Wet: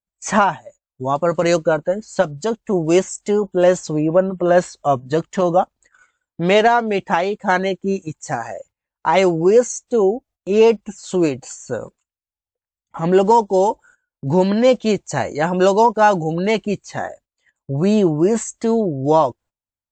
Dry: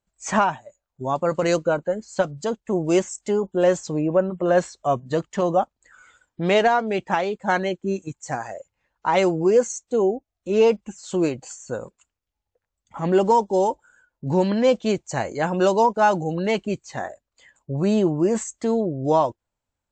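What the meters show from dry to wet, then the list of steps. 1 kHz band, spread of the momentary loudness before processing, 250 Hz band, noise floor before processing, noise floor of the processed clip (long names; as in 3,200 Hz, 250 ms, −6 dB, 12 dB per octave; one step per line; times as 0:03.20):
+4.5 dB, 12 LU, +4.5 dB, −84 dBFS, below −85 dBFS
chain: noise gate −49 dBFS, range −19 dB
level +4.5 dB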